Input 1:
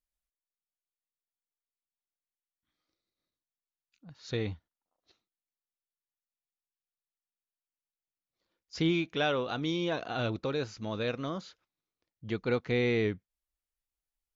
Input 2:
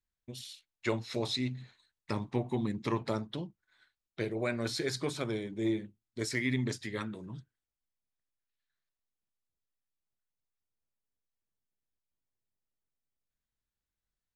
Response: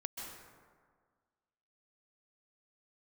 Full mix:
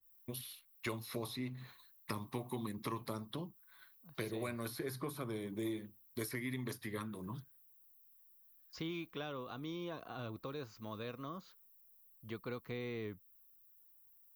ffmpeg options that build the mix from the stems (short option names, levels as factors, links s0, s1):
-filter_complex "[0:a]agate=range=0.355:threshold=0.00112:ratio=16:detection=peak,volume=0.335[s0];[1:a]aexciter=amount=13:drive=9.8:freq=11000,volume=1.33[s1];[s0][s1]amix=inputs=2:normalize=0,equalizer=f=1100:t=o:w=0.35:g=10.5,acrossover=split=360|2900[s2][s3][s4];[s2]acompressor=threshold=0.00708:ratio=4[s5];[s3]acompressor=threshold=0.00562:ratio=4[s6];[s4]acompressor=threshold=0.00398:ratio=4[s7];[s5][s6][s7]amix=inputs=3:normalize=0,adynamicequalizer=threshold=0.00158:dfrequency=1800:dqfactor=0.7:tfrequency=1800:tqfactor=0.7:attack=5:release=100:ratio=0.375:range=2.5:mode=cutabove:tftype=highshelf"